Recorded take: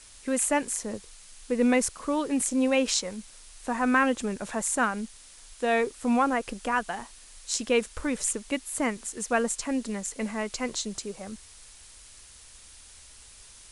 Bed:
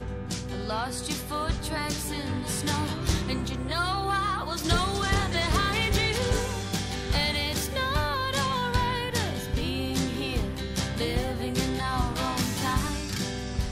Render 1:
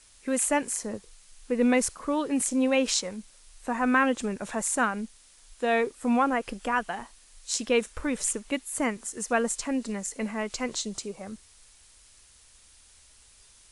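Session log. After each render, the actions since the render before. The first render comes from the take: noise print and reduce 6 dB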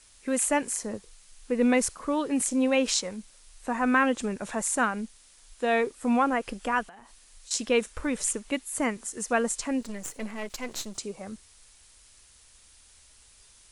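6.83–7.51 compressor 10:1, threshold -45 dBFS; 9.81–10.98 half-wave gain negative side -12 dB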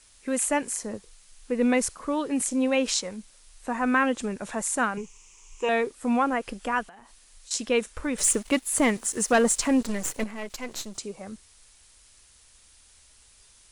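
4.97–5.69 ripple EQ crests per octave 0.74, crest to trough 17 dB; 8.18–10.24 sample leveller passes 2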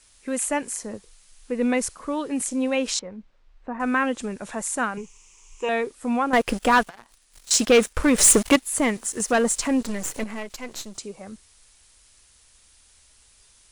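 2.99–3.8 tape spacing loss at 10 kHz 42 dB; 6.33–8.56 sample leveller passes 3; 9.2–10.43 upward compressor, threshold -24 dBFS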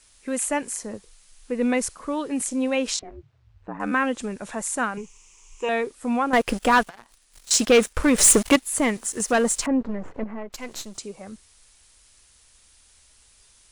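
2.96–3.91 ring modulator 210 Hz -> 40 Hz; 9.66–10.53 LPF 1200 Hz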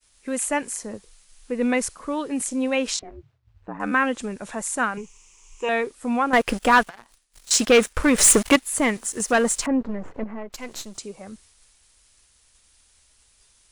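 expander -52 dBFS; dynamic EQ 1700 Hz, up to +3 dB, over -31 dBFS, Q 0.75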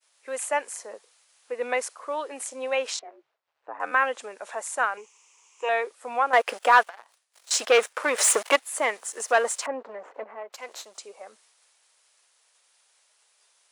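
HPF 540 Hz 24 dB/oct; tilt -2 dB/oct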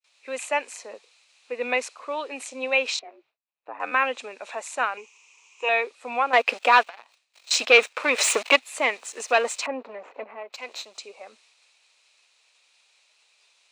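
gate with hold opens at -59 dBFS; thirty-one-band EQ 250 Hz +6 dB, 1600 Hz -3 dB, 2500 Hz +12 dB, 4000 Hz +8 dB, 10000 Hz -11 dB, 16000 Hz -12 dB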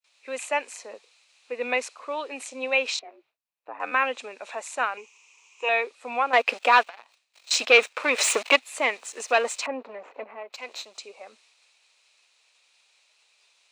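gain -1 dB

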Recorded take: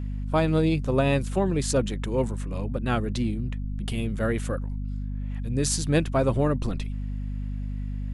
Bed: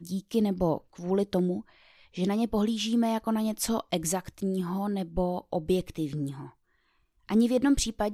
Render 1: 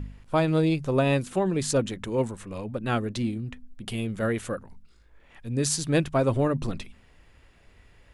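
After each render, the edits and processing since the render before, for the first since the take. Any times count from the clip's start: de-hum 50 Hz, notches 5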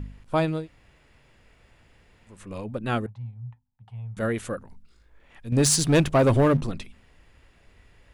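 0.56–2.38 room tone, crossfade 0.24 s; 3.06–4.17 double band-pass 320 Hz, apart 2.9 oct; 5.52–6.61 sample leveller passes 2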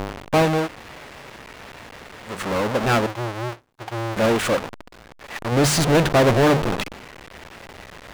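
half-waves squared off; overdrive pedal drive 28 dB, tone 2800 Hz, clips at -10 dBFS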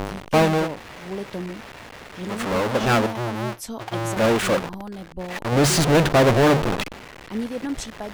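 add bed -5 dB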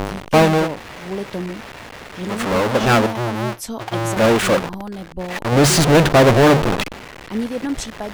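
gain +4.5 dB

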